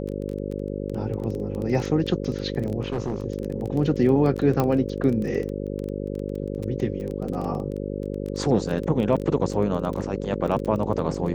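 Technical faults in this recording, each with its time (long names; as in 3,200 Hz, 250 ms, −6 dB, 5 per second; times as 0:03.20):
mains buzz 50 Hz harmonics 11 −30 dBFS
surface crackle 16 per second −28 dBFS
0:02.82–0:03.24: clipping −22 dBFS
0:04.60: click −10 dBFS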